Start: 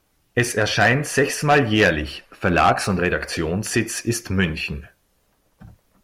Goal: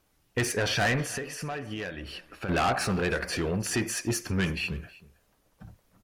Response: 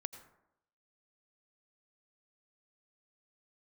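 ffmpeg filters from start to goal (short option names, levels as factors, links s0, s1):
-filter_complex "[0:a]asettb=1/sr,asplit=3[s0][s1][s2];[s0]atrim=end=1.024[s3];[s1]atrim=start=1.02:end=2.49,asetpts=PTS-STARTPTS,afade=t=in:d=0.004:c=qsin,afade=t=out:st=1.466:d=0.004:c=qsin,acompressor=threshold=0.0398:ratio=10[s4];[s2]atrim=start=2.486[s5];[s3][s4]acrossfade=d=0.004:c1=hsin:c2=qsin[s6];[s6][s5]acrossfade=d=0.004:c1=qsin:c2=hsin,asoftclip=type=tanh:threshold=0.141,aecho=1:1:318:0.0891,volume=0.631"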